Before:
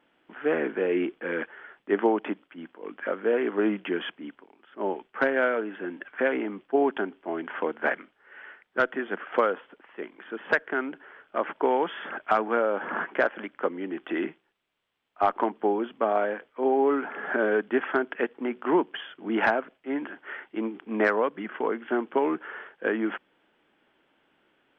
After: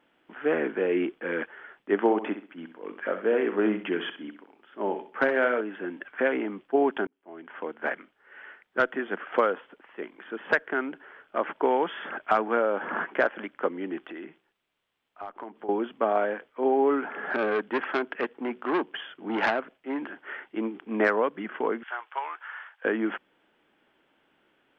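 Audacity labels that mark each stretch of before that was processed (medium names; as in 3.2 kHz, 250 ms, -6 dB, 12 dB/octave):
1.990000	5.610000	flutter echo walls apart 11.1 m, dies away in 0.37 s
7.070000	8.850000	fade in equal-power
14.060000	15.690000	compression 2.5:1, threshold -42 dBFS
17.300000	20.200000	transformer saturation saturates under 1.4 kHz
21.830000	22.850000	high-pass 840 Hz 24 dB/octave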